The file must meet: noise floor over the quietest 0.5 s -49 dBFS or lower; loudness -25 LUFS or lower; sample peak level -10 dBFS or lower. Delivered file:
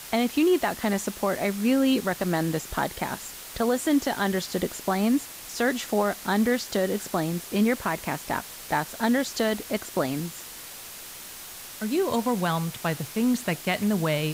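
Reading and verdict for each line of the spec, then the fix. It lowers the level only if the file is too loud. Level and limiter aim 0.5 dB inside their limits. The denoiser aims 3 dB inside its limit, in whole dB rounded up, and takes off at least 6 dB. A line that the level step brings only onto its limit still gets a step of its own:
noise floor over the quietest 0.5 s -41 dBFS: fail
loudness -26.5 LUFS: pass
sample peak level -13.0 dBFS: pass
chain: noise reduction 11 dB, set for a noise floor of -41 dBFS

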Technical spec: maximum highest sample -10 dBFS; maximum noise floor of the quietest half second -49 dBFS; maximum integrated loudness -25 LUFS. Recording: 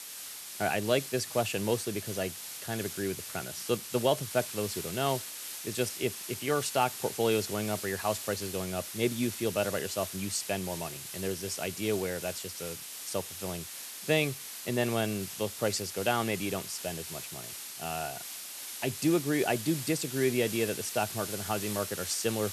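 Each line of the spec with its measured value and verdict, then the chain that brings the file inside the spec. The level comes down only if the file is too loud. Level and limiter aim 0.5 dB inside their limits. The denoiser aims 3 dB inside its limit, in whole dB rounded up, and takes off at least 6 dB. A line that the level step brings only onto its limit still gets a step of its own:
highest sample -12.5 dBFS: pass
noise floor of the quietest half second -43 dBFS: fail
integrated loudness -32.0 LUFS: pass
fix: noise reduction 9 dB, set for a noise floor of -43 dBFS

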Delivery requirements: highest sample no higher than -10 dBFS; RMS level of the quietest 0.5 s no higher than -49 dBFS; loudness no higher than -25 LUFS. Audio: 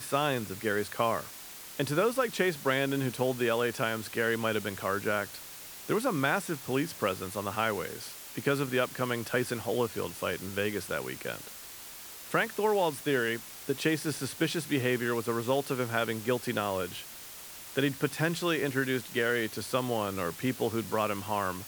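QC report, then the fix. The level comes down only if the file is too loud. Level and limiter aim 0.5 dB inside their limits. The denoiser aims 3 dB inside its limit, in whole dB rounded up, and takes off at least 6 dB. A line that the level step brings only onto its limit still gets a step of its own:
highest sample -12.5 dBFS: pass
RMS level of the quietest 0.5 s -46 dBFS: fail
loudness -31.0 LUFS: pass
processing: noise reduction 6 dB, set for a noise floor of -46 dBFS

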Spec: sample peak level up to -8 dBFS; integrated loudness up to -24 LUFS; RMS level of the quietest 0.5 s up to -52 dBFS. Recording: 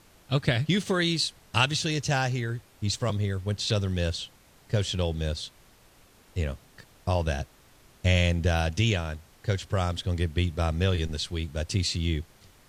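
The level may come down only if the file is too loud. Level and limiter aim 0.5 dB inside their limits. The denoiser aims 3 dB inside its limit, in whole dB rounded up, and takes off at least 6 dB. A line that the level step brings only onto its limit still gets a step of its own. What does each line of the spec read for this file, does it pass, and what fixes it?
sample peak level -7.0 dBFS: fail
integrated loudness -28.0 LUFS: pass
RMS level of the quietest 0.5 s -57 dBFS: pass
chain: peak limiter -8.5 dBFS

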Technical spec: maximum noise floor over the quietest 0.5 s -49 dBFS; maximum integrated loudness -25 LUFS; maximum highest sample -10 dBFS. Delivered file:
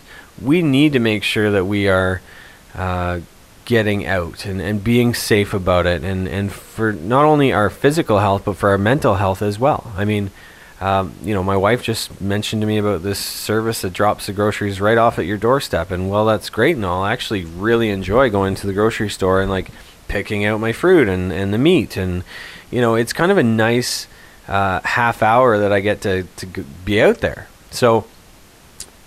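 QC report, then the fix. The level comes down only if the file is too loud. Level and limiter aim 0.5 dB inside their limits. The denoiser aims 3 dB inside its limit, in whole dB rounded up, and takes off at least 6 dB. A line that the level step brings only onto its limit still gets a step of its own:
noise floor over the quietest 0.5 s -45 dBFS: fail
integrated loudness -17.5 LUFS: fail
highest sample -2.5 dBFS: fail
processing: trim -8 dB

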